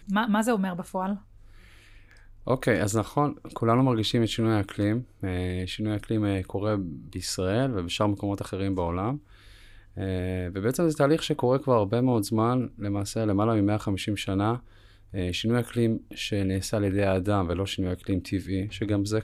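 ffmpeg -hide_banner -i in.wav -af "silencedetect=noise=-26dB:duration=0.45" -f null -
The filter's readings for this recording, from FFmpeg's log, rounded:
silence_start: 1.14
silence_end: 2.48 | silence_duration: 1.34
silence_start: 9.15
silence_end: 10.00 | silence_duration: 0.85
silence_start: 14.56
silence_end: 15.16 | silence_duration: 0.60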